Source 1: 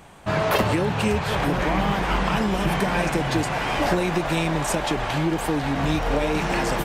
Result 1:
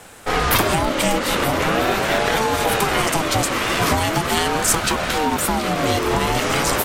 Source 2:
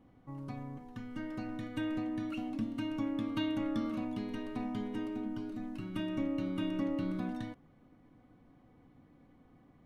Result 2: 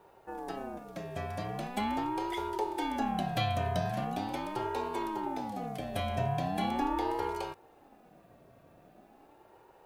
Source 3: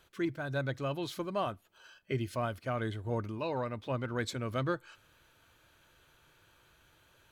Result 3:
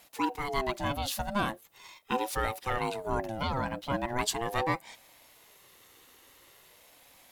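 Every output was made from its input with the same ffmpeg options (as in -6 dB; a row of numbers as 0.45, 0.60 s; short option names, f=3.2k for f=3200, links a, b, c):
-af "crystalizer=i=2.5:c=0,acontrast=40,aeval=exprs='val(0)*sin(2*PI*530*n/s+530*0.25/0.41*sin(2*PI*0.41*n/s))':c=same"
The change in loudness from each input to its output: +4.0, +3.0, +3.5 LU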